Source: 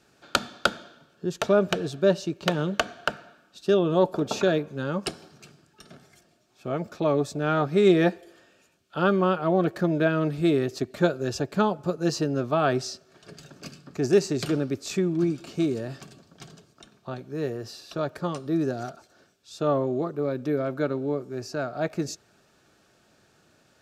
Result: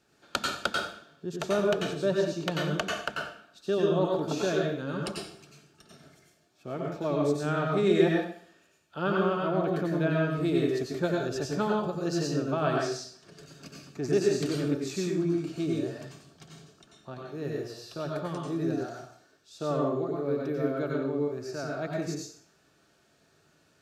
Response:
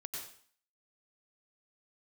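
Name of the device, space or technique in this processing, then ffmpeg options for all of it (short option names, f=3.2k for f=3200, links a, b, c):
bathroom: -filter_complex "[1:a]atrim=start_sample=2205[a];[0:a][a]afir=irnorm=-1:irlink=0,volume=-2dB"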